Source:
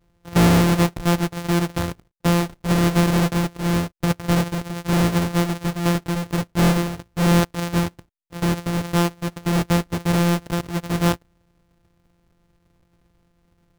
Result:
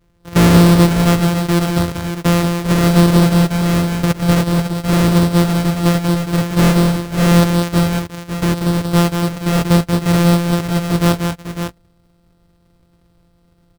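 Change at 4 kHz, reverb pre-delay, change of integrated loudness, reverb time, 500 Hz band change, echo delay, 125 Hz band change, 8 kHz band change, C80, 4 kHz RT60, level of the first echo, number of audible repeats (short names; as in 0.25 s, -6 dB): +6.5 dB, none, +6.5 dB, none, +6.5 dB, 0.186 s, +7.5 dB, +5.5 dB, none, none, -5.5 dB, 2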